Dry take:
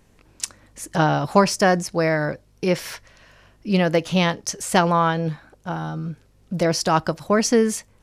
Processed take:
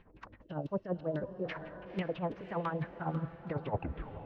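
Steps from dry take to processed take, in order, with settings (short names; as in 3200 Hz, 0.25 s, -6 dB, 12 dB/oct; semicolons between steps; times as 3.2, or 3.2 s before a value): tape stop at the end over 1.48 s; air absorption 220 m; LFO low-pass saw down 3.2 Hz 300–3200 Hz; reverse; compressor 6:1, threshold -29 dBFS, peak gain reduction 20.5 dB; reverse; time stretch by phase-locked vocoder 0.53×; tremolo 12 Hz, depth 69%; diffused feedback echo 0.5 s, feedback 45%, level -11.5 dB; spectral gain 0.41–1.44, 650–2600 Hz -10 dB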